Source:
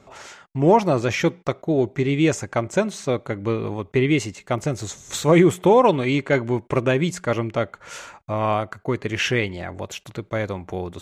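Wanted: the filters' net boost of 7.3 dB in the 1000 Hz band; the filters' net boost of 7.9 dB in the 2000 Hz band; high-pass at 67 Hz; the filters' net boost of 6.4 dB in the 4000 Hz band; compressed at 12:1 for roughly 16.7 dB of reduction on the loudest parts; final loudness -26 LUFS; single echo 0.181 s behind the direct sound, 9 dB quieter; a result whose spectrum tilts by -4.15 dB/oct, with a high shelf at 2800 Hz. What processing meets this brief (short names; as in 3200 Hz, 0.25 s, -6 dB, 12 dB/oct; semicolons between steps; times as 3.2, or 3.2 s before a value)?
HPF 67 Hz; bell 1000 Hz +7 dB; bell 2000 Hz +5.5 dB; high shelf 2800 Hz +3.5 dB; bell 4000 Hz +3 dB; compressor 12:1, threshold -22 dBFS; echo 0.181 s -9 dB; gain +1.5 dB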